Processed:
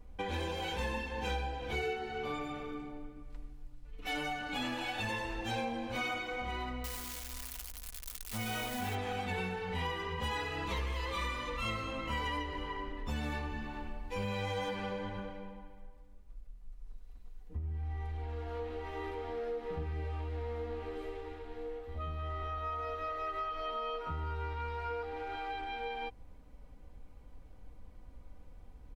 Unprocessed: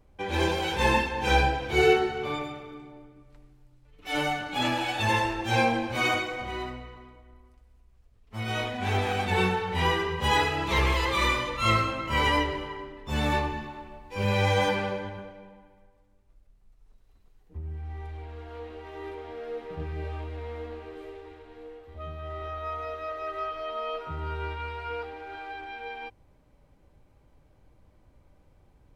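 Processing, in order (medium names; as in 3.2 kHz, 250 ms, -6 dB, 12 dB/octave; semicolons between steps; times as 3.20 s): 6.84–8.95 s: zero-crossing glitches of -27 dBFS; bass shelf 72 Hz +9 dB; comb 4.1 ms, depth 45%; compression 5:1, threshold -35 dBFS, peak gain reduction 18.5 dB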